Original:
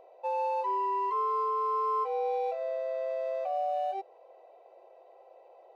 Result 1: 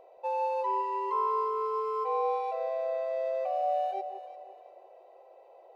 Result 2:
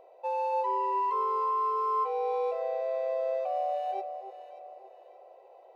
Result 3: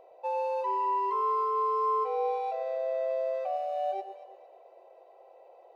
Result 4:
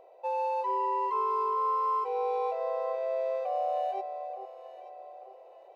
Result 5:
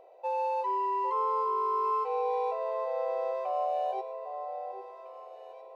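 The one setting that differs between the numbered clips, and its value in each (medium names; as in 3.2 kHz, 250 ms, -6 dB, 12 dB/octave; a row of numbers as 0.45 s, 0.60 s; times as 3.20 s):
echo whose repeats swap between lows and highs, time: 173 ms, 290 ms, 114 ms, 441 ms, 803 ms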